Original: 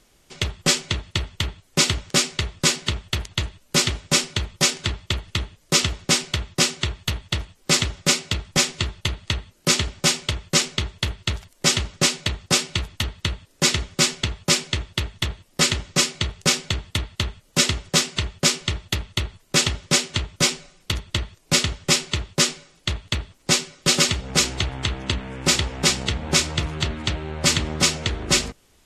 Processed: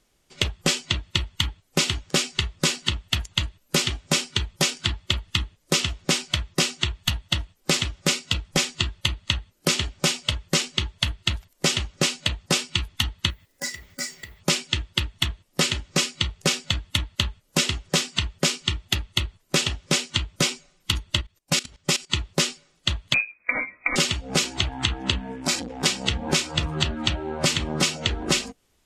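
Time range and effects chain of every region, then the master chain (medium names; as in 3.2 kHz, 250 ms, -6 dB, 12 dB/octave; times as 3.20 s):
13.30–14.41 s: block-companded coder 5-bit + peaking EQ 2 kHz +9.5 dB 0.24 oct + compression 2.5:1, threshold -36 dBFS
21.21–22.10 s: treble shelf 2.1 kHz +3.5 dB + level held to a coarse grid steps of 19 dB
23.14–23.96 s: doubling 16 ms -10.5 dB + compressor with a negative ratio -22 dBFS + frequency inversion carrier 2.5 kHz
25.32–25.86 s: compression 2:1, threshold -21 dBFS + transformer saturation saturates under 1.1 kHz
whole clip: spectral noise reduction 14 dB; dynamic bell 2.9 kHz, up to +5 dB, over -35 dBFS, Q 2.4; compression 6:1, threshold -25 dBFS; trim +5.5 dB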